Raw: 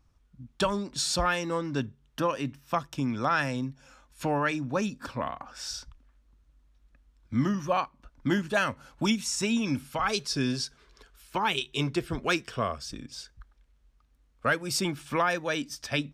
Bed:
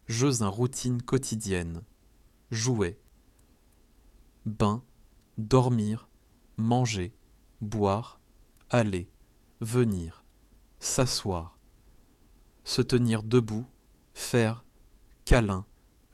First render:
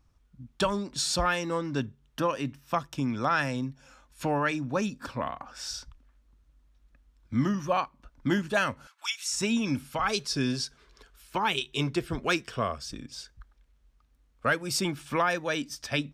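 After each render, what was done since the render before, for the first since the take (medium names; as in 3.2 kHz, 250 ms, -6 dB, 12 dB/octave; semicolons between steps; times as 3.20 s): 8.87–9.33 s: high-pass 1.2 kHz 24 dB/octave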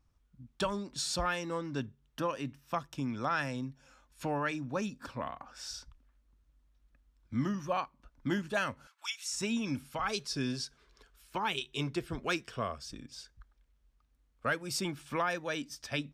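trim -6 dB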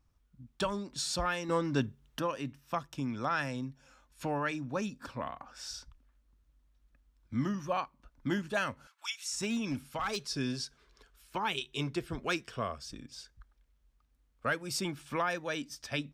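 1.49–2.19 s: gain +6 dB; 9.38–10.26 s: overload inside the chain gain 28 dB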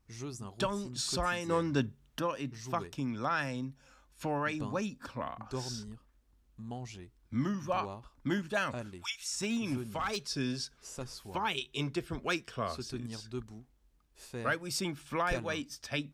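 add bed -17 dB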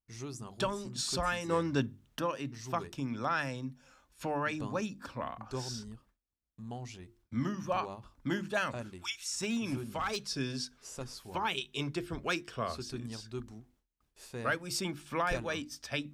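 hum notches 50/100/150/200/250/300/350 Hz; gate with hold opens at -59 dBFS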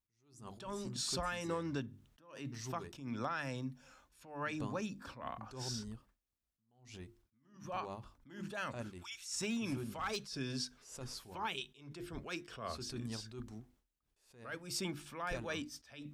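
compression 10:1, threshold -34 dBFS, peak gain reduction 11 dB; attacks held to a fixed rise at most 110 dB/s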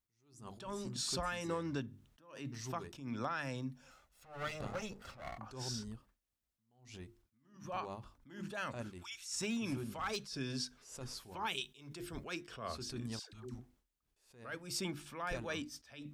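3.91–5.39 s: comb filter that takes the minimum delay 1.5 ms; 11.46–12.24 s: treble shelf 4.4 kHz +7.5 dB; 13.19–13.59 s: phase dispersion lows, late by 140 ms, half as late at 570 Hz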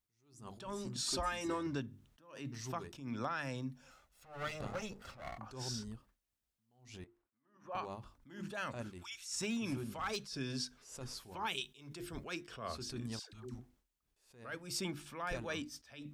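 1.06–1.67 s: comb 3.2 ms; 7.04–7.75 s: three-band isolator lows -17 dB, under 330 Hz, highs -16 dB, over 2 kHz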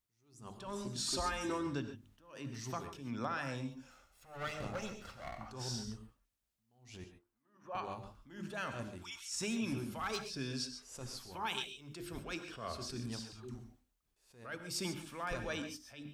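gated-style reverb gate 160 ms rising, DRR 8 dB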